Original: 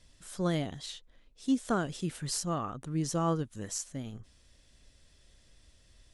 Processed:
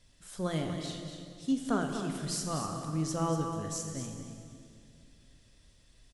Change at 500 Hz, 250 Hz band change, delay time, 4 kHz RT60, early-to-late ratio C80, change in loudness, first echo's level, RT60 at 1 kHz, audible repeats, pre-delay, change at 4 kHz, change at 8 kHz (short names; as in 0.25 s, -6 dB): -0.5 dB, -0.5 dB, 0.241 s, 2.1 s, 4.5 dB, -0.5 dB, -9.5 dB, 2.2 s, 1, 3 ms, -0.5 dB, -0.5 dB